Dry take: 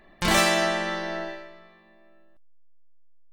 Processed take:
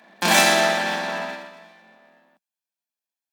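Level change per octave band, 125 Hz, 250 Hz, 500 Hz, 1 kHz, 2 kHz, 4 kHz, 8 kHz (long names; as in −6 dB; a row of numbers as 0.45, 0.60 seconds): −1.0, +1.0, +3.5, +5.0, +5.5, +5.0, +6.0 decibels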